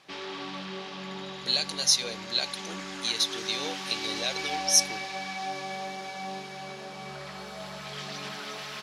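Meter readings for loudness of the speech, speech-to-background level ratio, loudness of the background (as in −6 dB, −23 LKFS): −27.0 LKFS, 9.0 dB, −36.0 LKFS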